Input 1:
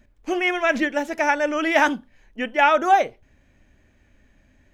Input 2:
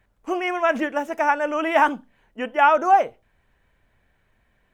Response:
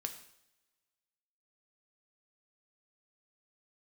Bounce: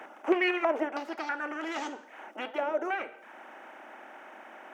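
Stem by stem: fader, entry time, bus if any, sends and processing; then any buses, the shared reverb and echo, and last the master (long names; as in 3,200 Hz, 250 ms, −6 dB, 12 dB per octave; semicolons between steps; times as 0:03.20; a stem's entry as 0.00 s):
−3.5 dB, 0.00 s, send −14.5 dB, lower of the sound and its delayed copy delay 2.1 ms; spectral tilt −2.5 dB per octave; low-pass on a step sequencer 3.1 Hz 510–6,900 Hz; automatic ducking −22 dB, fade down 1.50 s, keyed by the second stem
−14.0 dB, 0.00 s, no send, compressor on every frequency bin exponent 0.4; reverb reduction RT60 0.58 s; downward compressor 10 to 1, threshold −19 dBFS, peak gain reduction 11 dB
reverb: on, pre-delay 3 ms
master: high-pass filter 240 Hz 24 dB per octave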